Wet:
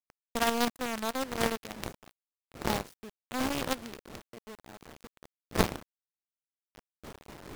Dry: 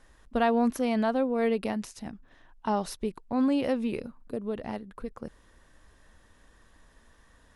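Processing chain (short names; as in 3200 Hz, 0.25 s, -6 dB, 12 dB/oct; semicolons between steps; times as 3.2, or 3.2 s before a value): wind noise 450 Hz -35 dBFS; bit-crush 5-bit; power-law curve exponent 3; gain +8 dB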